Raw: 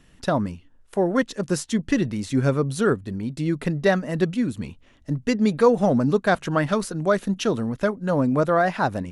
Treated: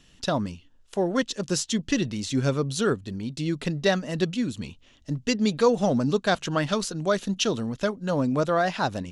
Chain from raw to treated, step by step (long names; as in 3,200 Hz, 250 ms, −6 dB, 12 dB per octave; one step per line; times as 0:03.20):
flat-topped bell 4,500 Hz +9 dB
level −3.5 dB